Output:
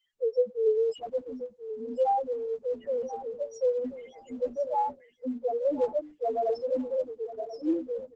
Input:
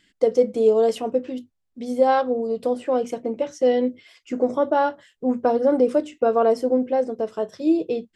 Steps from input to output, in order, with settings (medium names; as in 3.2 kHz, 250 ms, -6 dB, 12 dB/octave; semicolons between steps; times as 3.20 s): tilt EQ +2.5 dB/octave; loudest bins only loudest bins 1; feedback delay 1035 ms, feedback 16%, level -13 dB; Opus 12 kbps 48 kHz